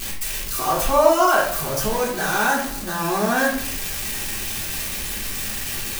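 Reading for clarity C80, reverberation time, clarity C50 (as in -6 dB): 8.5 dB, 0.65 s, 5.0 dB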